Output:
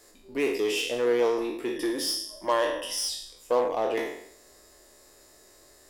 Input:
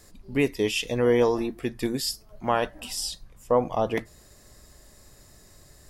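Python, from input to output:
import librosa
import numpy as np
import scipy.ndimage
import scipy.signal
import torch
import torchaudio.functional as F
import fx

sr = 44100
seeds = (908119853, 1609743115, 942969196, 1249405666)

p1 = fx.spec_trails(x, sr, decay_s=0.68)
p2 = fx.ripple_eq(p1, sr, per_octave=1.2, db=13, at=(1.76, 3.09))
p3 = 10.0 ** (-24.5 / 20.0) * (np.abs((p2 / 10.0 ** (-24.5 / 20.0) + 3.0) % 4.0 - 2.0) - 1.0)
p4 = p2 + (p3 * 10.0 ** (-8.0 / 20.0))
p5 = fx.low_shelf_res(p4, sr, hz=240.0, db=-13.0, q=1.5)
y = p5 * 10.0 ** (-5.5 / 20.0)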